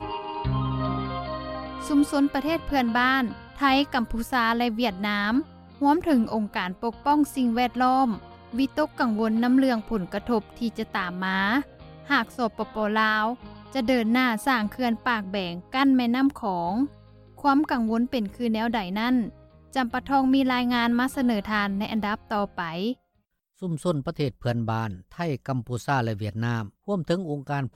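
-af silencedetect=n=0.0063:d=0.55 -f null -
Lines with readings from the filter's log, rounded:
silence_start: 22.93
silence_end: 23.62 | silence_duration: 0.68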